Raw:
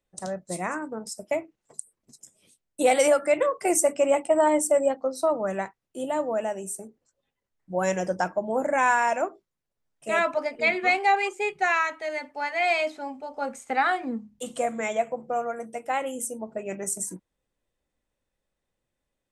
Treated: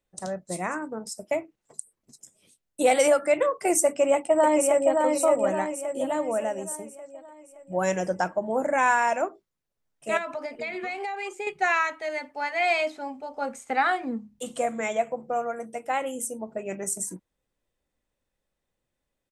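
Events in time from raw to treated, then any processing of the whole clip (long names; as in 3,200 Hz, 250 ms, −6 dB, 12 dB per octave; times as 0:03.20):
0:03.86–0:05.00: delay throw 570 ms, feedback 50%, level −3.5 dB
0:10.17–0:11.47: downward compressor 16 to 1, threshold −28 dBFS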